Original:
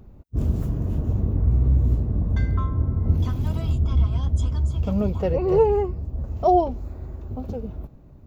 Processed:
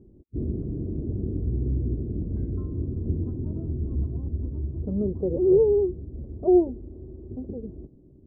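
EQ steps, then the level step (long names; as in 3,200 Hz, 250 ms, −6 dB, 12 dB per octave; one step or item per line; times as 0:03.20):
low-pass with resonance 360 Hz, resonance Q 3.5
high-frequency loss of the air 290 metres
low-shelf EQ 63 Hz −7 dB
−5.5 dB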